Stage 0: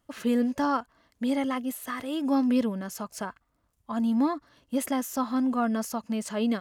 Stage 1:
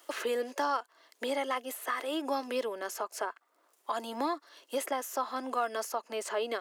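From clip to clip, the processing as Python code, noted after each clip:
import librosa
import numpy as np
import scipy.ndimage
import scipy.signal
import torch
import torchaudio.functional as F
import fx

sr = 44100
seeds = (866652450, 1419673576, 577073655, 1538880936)

y = scipy.signal.sosfilt(scipy.signal.cheby1(4, 1.0, 360.0, 'highpass', fs=sr, output='sos'), x)
y = fx.band_squash(y, sr, depth_pct=70)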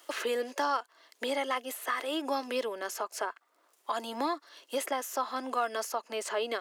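y = fx.peak_eq(x, sr, hz=3500.0, db=3.0, octaves=2.5)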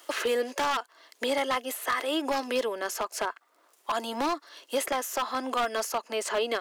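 y = 10.0 ** (-24.5 / 20.0) * (np.abs((x / 10.0 ** (-24.5 / 20.0) + 3.0) % 4.0 - 2.0) - 1.0)
y = F.gain(torch.from_numpy(y), 4.5).numpy()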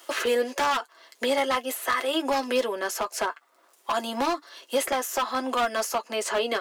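y = fx.notch_comb(x, sr, f0_hz=150.0)
y = F.gain(torch.from_numpy(y), 4.0).numpy()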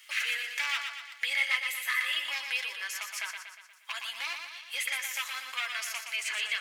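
y = fx.highpass_res(x, sr, hz=2200.0, q=4.2)
y = fx.echo_feedback(y, sr, ms=119, feedback_pct=53, wet_db=-6.0)
y = F.gain(torch.from_numpy(y), -6.5).numpy()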